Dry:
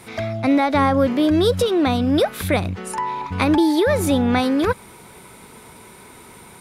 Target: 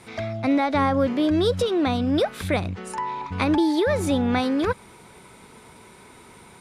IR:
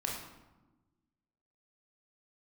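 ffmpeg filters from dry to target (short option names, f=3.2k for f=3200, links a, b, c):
-af "lowpass=8.9k,volume=-4dB"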